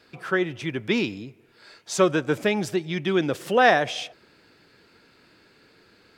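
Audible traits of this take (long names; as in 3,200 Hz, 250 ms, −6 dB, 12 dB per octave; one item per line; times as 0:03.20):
background noise floor −58 dBFS
spectral slope −3.5 dB per octave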